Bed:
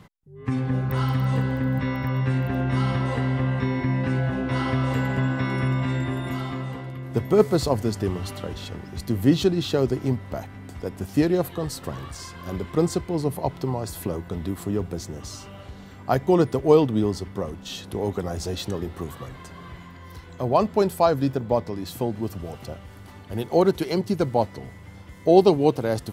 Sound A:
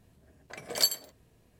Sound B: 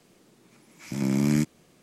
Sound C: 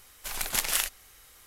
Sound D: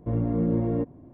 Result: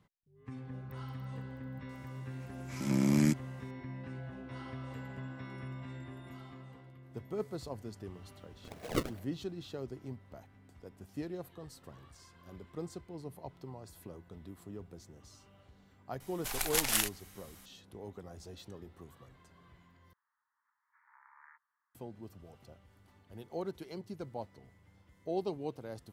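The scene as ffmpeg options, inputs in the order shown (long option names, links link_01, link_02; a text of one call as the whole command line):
ffmpeg -i bed.wav -i cue0.wav -i cue1.wav -i cue2.wav -filter_complex "[2:a]asplit=2[link_01][link_02];[0:a]volume=-20dB[link_03];[1:a]acrusher=samples=31:mix=1:aa=0.000001:lfo=1:lforange=49.6:lforate=2.6[link_04];[3:a]equalizer=frequency=760:width_type=o:width=0.35:gain=4[link_05];[link_02]asuperpass=centerf=1300:order=12:qfactor=1.3[link_06];[link_03]asplit=2[link_07][link_08];[link_07]atrim=end=20.134[link_09];[link_06]atrim=end=1.82,asetpts=PTS-STARTPTS,volume=-14.5dB[link_10];[link_08]atrim=start=21.946[link_11];[link_01]atrim=end=1.82,asetpts=PTS-STARTPTS,volume=-4dB,afade=type=in:duration=0.004:curve=hsin,afade=type=out:start_time=1.816:duration=0.004:curve=hsin,adelay=1890[link_12];[link_04]atrim=end=1.59,asetpts=PTS-STARTPTS,volume=-5.5dB,afade=type=in:duration=0.004:curve=hsin,afade=type=out:start_time=1.586:duration=0.004:curve=hsin,adelay=8140[link_13];[link_05]atrim=end=1.46,asetpts=PTS-STARTPTS,volume=-3dB,afade=type=in:duration=0.004:curve=hsin,afade=type=out:start_time=1.456:duration=0.004:curve=hsin,adelay=714420S[link_14];[link_09][link_10]acrossfade=duration=0.004:curve1=hsin:curve2=hsin[link_15];[link_15][link_11]acrossfade=duration=0.004:curve1=hsin:curve2=hsin[link_16];[link_16][link_12][link_13][link_14]amix=inputs=4:normalize=0" out.wav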